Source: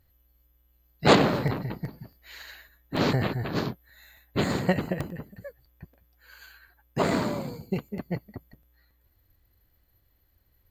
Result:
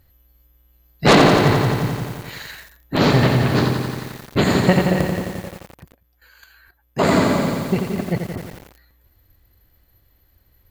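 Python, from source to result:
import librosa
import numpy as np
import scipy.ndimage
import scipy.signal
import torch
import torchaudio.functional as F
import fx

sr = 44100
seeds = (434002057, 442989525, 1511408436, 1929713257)

y = fx.level_steps(x, sr, step_db=12, at=(5.42, 7.03))
y = fx.fold_sine(y, sr, drive_db=6, ceiling_db=-5.0)
y = fx.echo_crushed(y, sr, ms=87, feedback_pct=80, bits=6, wet_db=-5.5)
y = y * librosa.db_to_amplitude(-1.0)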